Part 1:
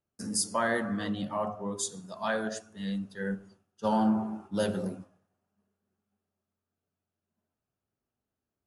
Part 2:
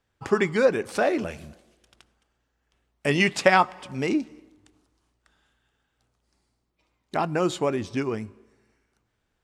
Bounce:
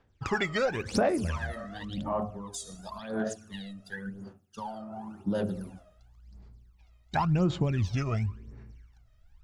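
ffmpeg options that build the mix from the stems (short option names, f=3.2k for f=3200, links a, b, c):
-filter_complex "[0:a]alimiter=level_in=3.5dB:limit=-24dB:level=0:latency=1,volume=-3.5dB,acompressor=threshold=-39dB:ratio=6,adelay=750,volume=1.5dB[a];[1:a]lowpass=f=7k:w=0.5412,lowpass=f=7k:w=1.3066,asubboost=boost=7:cutoff=130,acontrast=88,volume=-9.5dB,asplit=3[b][c][d];[b]atrim=end=3,asetpts=PTS-STARTPTS,afade=t=out:st=2.996:d=0.004:c=hsin[e];[c]atrim=start=3:end=5.54,asetpts=PTS-STARTPTS,volume=0[f];[d]atrim=start=5.54,asetpts=PTS-STARTPTS,afade=t=in:d=0.004:c=hsin[g];[e][f][g]concat=n=3:v=0:a=1[h];[a][h]amix=inputs=2:normalize=0,aphaser=in_gain=1:out_gain=1:delay=1.6:decay=0.77:speed=0.93:type=sinusoidal,acompressor=threshold=-23dB:ratio=6"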